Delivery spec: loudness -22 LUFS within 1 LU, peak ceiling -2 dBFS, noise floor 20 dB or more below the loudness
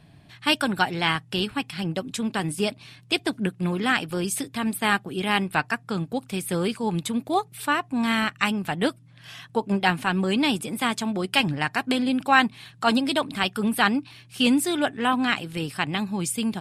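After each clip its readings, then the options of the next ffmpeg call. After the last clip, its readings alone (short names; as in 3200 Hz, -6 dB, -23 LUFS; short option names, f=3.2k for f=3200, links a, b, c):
loudness -24.5 LUFS; peak -3.0 dBFS; loudness target -22.0 LUFS
-> -af "volume=2.5dB,alimiter=limit=-2dB:level=0:latency=1"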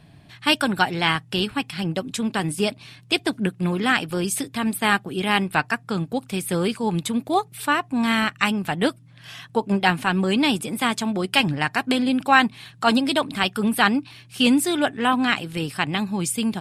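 loudness -22.5 LUFS; peak -2.0 dBFS; noise floor -50 dBFS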